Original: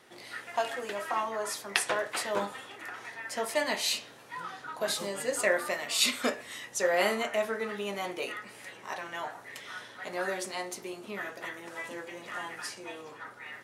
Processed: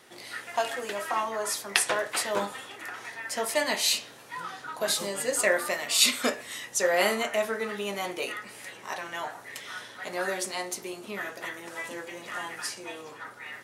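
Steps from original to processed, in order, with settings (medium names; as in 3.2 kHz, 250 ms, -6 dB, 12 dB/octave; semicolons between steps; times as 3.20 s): treble shelf 4.4 kHz +5.5 dB; trim +2 dB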